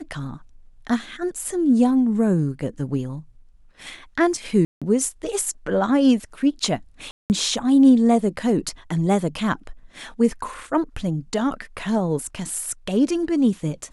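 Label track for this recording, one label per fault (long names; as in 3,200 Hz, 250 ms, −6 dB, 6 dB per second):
4.650000	4.820000	drop-out 166 ms
7.110000	7.300000	drop-out 189 ms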